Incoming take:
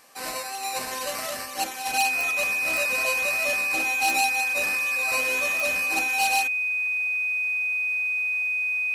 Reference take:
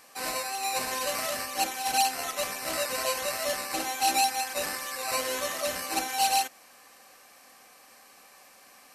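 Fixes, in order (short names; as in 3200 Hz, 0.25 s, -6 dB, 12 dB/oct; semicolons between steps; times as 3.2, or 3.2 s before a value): clip repair -13 dBFS; de-click; notch 2500 Hz, Q 30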